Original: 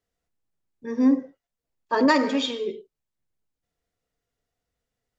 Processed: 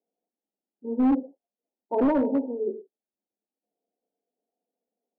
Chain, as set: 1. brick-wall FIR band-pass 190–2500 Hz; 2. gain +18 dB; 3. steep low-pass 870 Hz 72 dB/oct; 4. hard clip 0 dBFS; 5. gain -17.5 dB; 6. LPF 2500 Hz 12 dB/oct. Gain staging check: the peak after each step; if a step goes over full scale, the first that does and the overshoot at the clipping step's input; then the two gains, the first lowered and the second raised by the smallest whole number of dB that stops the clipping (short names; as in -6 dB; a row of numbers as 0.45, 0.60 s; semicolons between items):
-8.5, +9.5, +7.5, 0.0, -17.5, -17.0 dBFS; step 2, 7.5 dB; step 2 +10 dB, step 5 -9.5 dB